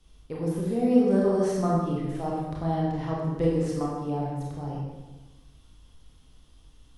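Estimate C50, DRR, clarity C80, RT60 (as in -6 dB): -0.5 dB, -4.5 dB, 2.0 dB, 1.2 s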